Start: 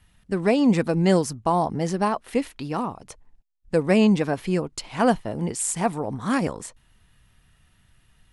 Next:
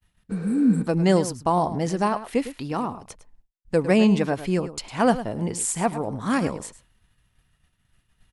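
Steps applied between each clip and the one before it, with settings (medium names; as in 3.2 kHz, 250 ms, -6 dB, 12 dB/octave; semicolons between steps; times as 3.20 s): spectral replace 0.33–0.79 s, 320–7500 Hz after; echo from a far wall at 18 m, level -13 dB; expander -51 dBFS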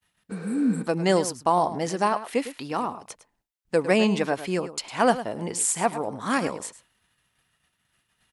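high-pass 440 Hz 6 dB/octave; trim +2 dB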